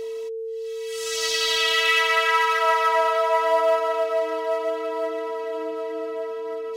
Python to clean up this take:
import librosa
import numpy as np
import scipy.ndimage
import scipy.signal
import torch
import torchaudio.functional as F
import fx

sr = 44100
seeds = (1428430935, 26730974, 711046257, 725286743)

y = fx.fix_declip(x, sr, threshold_db=-9.5)
y = fx.notch(y, sr, hz=450.0, q=30.0)